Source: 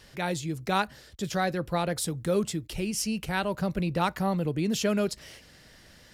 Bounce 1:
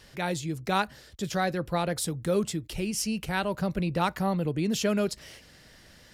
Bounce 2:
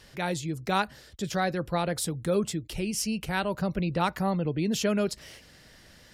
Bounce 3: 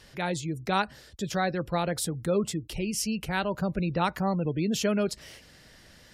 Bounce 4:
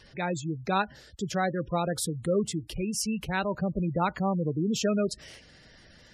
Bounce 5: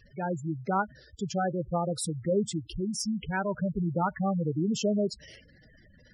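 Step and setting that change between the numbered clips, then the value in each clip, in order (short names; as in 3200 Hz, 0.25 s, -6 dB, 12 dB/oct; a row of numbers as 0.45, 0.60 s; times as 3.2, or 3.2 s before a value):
spectral gate, under each frame's peak: -60, -45, -35, -20, -10 dB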